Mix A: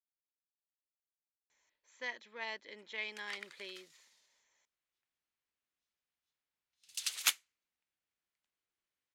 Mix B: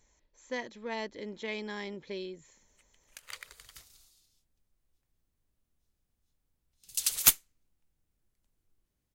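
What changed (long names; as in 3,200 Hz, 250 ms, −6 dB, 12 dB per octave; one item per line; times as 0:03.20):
speech: entry −1.50 s
master: remove resonant band-pass 2,300 Hz, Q 0.82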